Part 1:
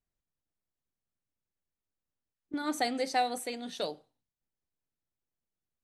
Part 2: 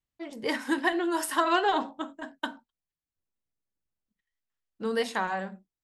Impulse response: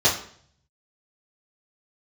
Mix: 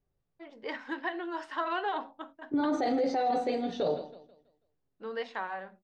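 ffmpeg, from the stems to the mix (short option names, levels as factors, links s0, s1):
-filter_complex "[0:a]tiltshelf=f=1400:g=7.5,volume=1.19,asplit=3[s0][s1][s2];[s1]volume=0.119[s3];[s2]volume=0.188[s4];[1:a]bass=f=250:g=-14,treble=f=4000:g=-11,adelay=200,volume=0.501[s5];[2:a]atrim=start_sample=2205[s6];[s3][s6]afir=irnorm=-1:irlink=0[s7];[s4]aecho=0:1:163|326|489|652|815:1|0.34|0.116|0.0393|0.0134[s8];[s0][s5][s7][s8]amix=inputs=4:normalize=0,lowpass=f=5800:w=0.5412,lowpass=f=5800:w=1.3066,alimiter=limit=0.0841:level=0:latency=1:release=12"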